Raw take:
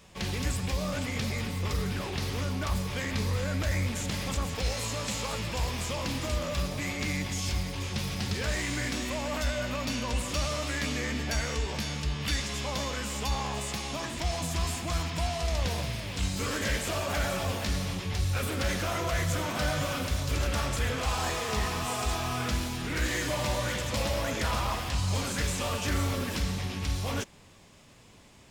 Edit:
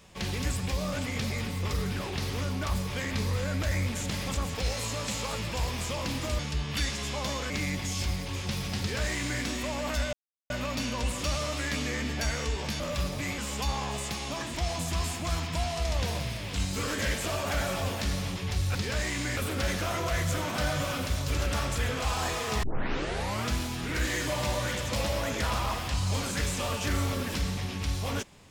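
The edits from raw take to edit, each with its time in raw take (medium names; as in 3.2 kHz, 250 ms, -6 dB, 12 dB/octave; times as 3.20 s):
6.39–6.97 s: swap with 11.90–13.01 s
8.27–8.89 s: copy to 18.38 s
9.60 s: insert silence 0.37 s
21.64 s: tape start 0.85 s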